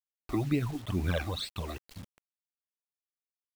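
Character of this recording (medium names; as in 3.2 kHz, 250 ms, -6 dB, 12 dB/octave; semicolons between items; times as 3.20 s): phasing stages 12, 2.2 Hz, lowest notch 150–1200 Hz; a quantiser's noise floor 8-bit, dither none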